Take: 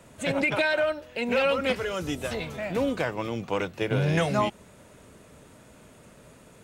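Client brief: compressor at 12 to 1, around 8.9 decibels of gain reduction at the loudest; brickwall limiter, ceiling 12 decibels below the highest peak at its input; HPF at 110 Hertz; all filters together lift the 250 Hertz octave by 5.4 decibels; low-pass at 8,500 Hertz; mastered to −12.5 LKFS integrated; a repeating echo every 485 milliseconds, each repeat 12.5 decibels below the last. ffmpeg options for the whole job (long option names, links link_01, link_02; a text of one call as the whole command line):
ffmpeg -i in.wav -af "highpass=110,lowpass=8500,equalizer=frequency=250:width_type=o:gain=7,acompressor=threshold=-27dB:ratio=12,alimiter=level_in=5dB:limit=-24dB:level=0:latency=1,volume=-5dB,aecho=1:1:485|970|1455:0.237|0.0569|0.0137,volume=25dB" out.wav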